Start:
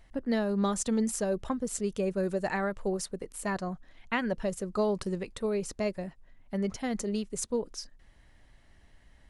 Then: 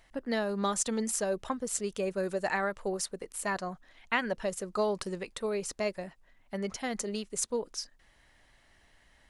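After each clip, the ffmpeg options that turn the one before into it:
ffmpeg -i in.wav -af "lowshelf=frequency=360:gain=-11.5,volume=3dB" out.wav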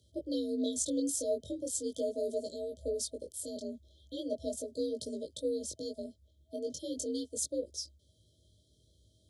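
ffmpeg -i in.wav -af "flanger=delay=17.5:depth=5.3:speed=0.39,afreqshift=57,afftfilt=real='re*(1-between(b*sr/4096,650,3100))':imag='im*(1-between(b*sr/4096,650,3100))':win_size=4096:overlap=0.75,volume=1dB" out.wav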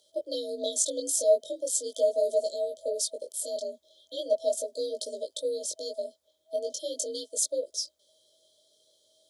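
ffmpeg -i in.wav -af "highpass=frequency=770:width_type=q:width=3.8,volume=7.5dB" out.wav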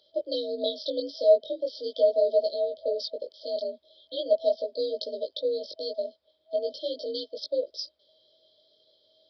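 ffmpeg -i in.wav -af "aresample=11025,aresample=44100,volume=3dB" out.wav

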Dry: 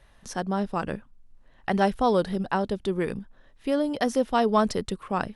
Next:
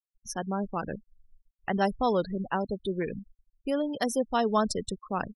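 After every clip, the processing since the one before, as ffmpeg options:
ffmpeg -i in.wav -af "aemphasis=mode=production:type=50fm,afftfilt=real='re*gte(hypot(re,im),0.0355)':imag='im*gte(hypot(re,im),0.0355)':win_size=1024:overlap=0.75,volume=-3.5dB" out.wav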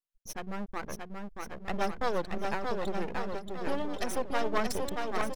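ffmpeg -i in.wav -filter_complex "[0:a]aeval=exprs='max(val(0),0)':channel_layout=same,asplit=2[link_01][link_02];[link_02]aecho=0:1:630|1134|1537|1860|2118:0.631|0.398|0.251|0.158|0.1[link_03];[link_01][link_03]amix=inputs=2:normalize=0" out.wav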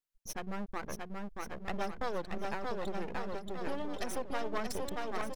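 ffmpeg -i in.wav -af "acompressor=threshold=-34dB:ratio=2" out.wav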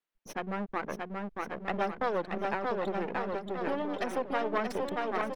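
ffmpeg -i in.wav -filter_complex "[0:a]acrossover=split=160 3300:gain=0.2 1 0.178[link_01][link_02][link_03];[link_01][link_02][link_03]amix=inputs=3:normalize=0,volume=6.5dB" out.wav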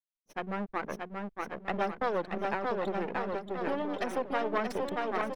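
ffmpeg -i in.wav -af "agate=range=-33dB:threshold=-35dB:ratio=3:detection=peak" out.wav

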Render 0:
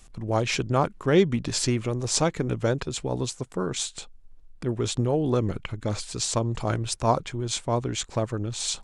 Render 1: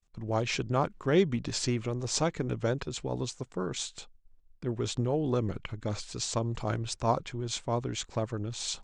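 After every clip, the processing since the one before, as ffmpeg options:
ffmpeg -i in.wav -af "lowpass=frequency=7700:width=0.5412,lowpass=frequency=7700:width=1.3066,agate=range=-33dB:threshold=-39dB:ratio=3:detection=peak,volume=-5dB" out.wav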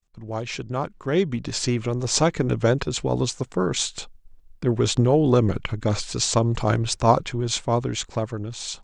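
ffmpeg -i in.wav -af "dynaudnorm=framelen=490:gausssize=7:maxgain=11.5dB" out.wav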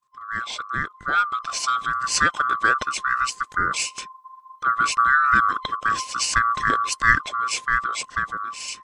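ffmpeg -i in.wav -af "afftfilt=real='real(if(lt(b,960),b+48*(1-2*mod(floor(b/48),2)),b),0)':imag='imag(if(lt(b,960),b+48*(1-2*mod(floor(b/48),2)),b),0)':win_size=2048:overlap=0.75" out.wav

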